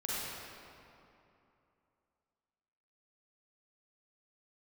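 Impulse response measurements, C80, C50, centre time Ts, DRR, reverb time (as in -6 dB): -3.0 dB, -6.0 dB, 0.186 s, -8.0 dB, 2.8 s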